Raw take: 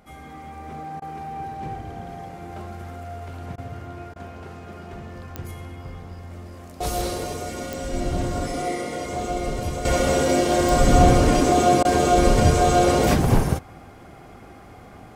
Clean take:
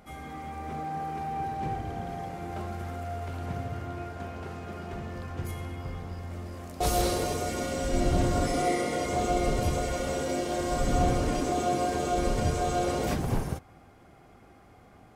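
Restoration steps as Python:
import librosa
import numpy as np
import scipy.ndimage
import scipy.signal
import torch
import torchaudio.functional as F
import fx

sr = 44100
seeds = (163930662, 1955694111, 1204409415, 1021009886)

y = fx.fix_declick_ar(x, sr, threshold=10.0)
y = fx.fix_interpolate(y, sr, at_s=(1.0, 3.56, 4.14, 11.83), length_ms=18.0)
y = fx.fix_level(y, sr, at_s=9.85, step_db=-10.5)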